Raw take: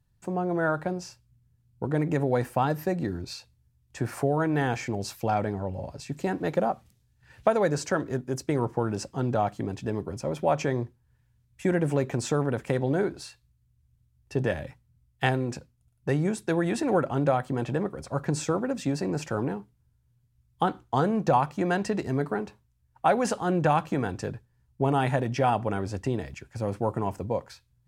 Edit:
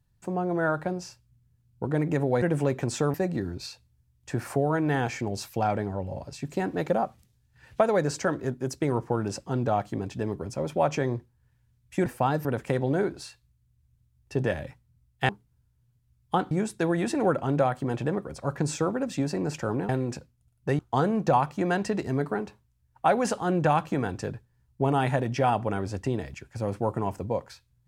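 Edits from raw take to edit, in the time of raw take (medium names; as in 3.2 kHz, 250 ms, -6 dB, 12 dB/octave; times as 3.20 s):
2.42–2.81 s: swap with 11.73–12.45 s
15.29–16.19 s: swap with 19.57–20.79 s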